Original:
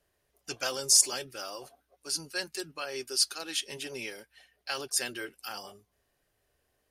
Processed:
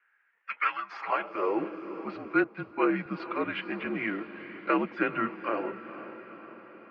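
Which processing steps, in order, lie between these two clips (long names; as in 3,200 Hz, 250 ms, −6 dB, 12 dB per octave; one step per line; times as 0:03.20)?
feedback delay with all-pass diffusion 482 ms, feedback 59%, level −13 dB
in parallel at −10 dB: hard clipping −24.5 dBFS, distortion −6 dB
on the sum: single-sideband voice off tune −210 Hz 230–2,400 Hz
high-pass filter sweep 1,700 Hz → 320 Hz, 0:00.70–0:01.62
0:02.44–0:03.06: multiband upward and downward expander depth 70%
level +7 dB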